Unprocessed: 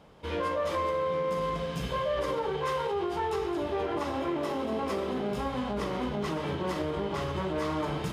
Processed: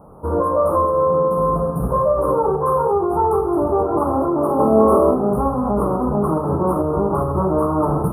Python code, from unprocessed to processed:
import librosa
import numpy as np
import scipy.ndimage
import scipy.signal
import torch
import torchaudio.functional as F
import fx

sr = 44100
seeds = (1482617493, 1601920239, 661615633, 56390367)

p1 = scipy.signal.sosfilt(scipy.signal.cheby1(5, 1.0, [1300.0, 9400.0], 'bandstop', fs=sr, output='sos'), x)
p2 = fx.room_flutter(p1, sr, wall_m=4.7, rt60_s=0.64, at=(4.58, 5.14), fade=0.02)
p3 = fx.volume_shaper(p2, sr, bpm=141, per_beat=1, depth_db=-5, release_ms=120.0, shape='slow start')
p4 = p2 + (p3 * 10.0 ** (2.0 / 20.0))
y = p4 * 10.0 ** (7.0 / 20.0)